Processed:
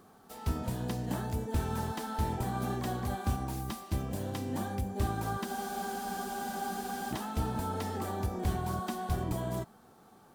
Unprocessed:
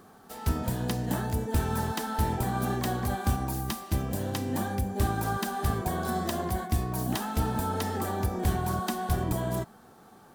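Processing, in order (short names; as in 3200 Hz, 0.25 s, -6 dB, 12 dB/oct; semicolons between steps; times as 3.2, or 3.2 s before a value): bell 1700 Hz -3 dB 0.36 oct; spectral freeze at 5.49, 1.62 s; slew limiter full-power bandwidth 88 Hz; gain -4.5 dB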